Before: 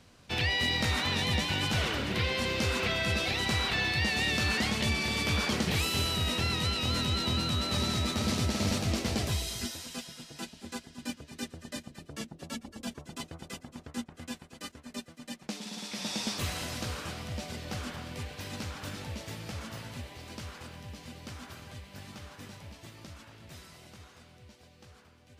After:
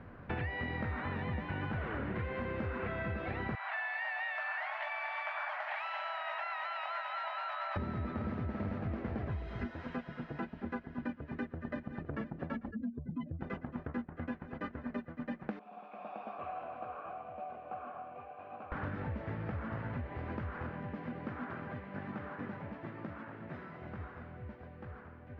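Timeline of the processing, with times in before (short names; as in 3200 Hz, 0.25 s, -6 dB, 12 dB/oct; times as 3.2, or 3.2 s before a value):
3.55–7.76 rippled Chebyshev high-pass 610 Hz, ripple 3 dB
11.11–12.07 echo throw 0.51 s, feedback 85%, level -15.5 dB
12.71–13.41 spectral contrast raised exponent 2.6
15.59–18.72 vowel filter a
20.7–23.82 Chebyshev high-pass 180 Hz
whole clip: Chebyshev low-pass 1700 Hz, order 3; compressor, threshold -44 dBFS; gain +8.5 dB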